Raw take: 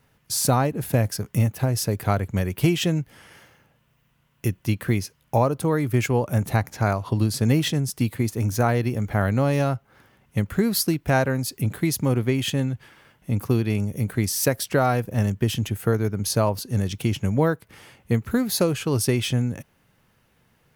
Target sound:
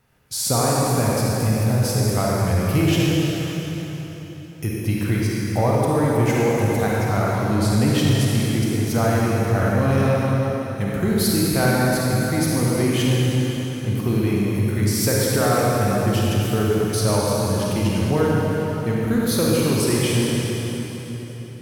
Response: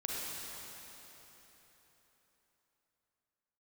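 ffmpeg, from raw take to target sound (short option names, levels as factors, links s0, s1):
-filter_complex "[0:a]asetrate=42336,aresample=44100[s0];[1:a]atrim=start_sample=2205[s1];[s0][s1]afir=irnorm=-1:irlink=0,asoftclip=type=tanh:threshold=0.355,volume=1.12"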